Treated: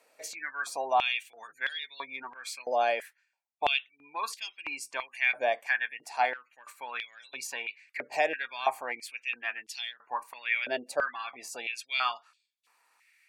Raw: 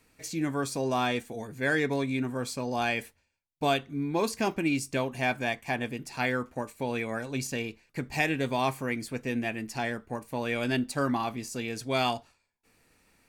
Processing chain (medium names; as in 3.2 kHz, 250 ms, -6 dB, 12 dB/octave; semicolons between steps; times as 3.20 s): spectral gate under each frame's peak -30 dB strong; in parallel at -2 dB: gain riding 0.5 s; on the sum: Chebyshev shaper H 7 -44 dB, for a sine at -8 dBFS; step-sequenced high-pass 3 Hz 590–3400 Hz; trim -8 dB